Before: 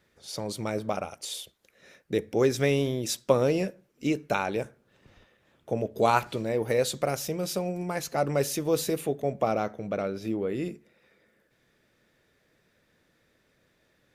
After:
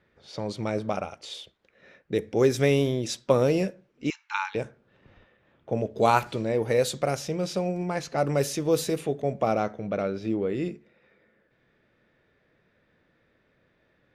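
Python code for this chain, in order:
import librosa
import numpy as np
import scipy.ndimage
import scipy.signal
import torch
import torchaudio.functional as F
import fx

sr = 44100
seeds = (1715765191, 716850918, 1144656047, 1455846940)

y = fx.brickwall_bandpass(x, sr, low_hz=820.0, high_hz=7600.0, at=(4.1, 4.55))
y = fx.env_lowpass(y, sr, base_hz=2700.0, full_db=-20.5)
y = fx.hpss(y, sr, part='harmonic', gain_db=3)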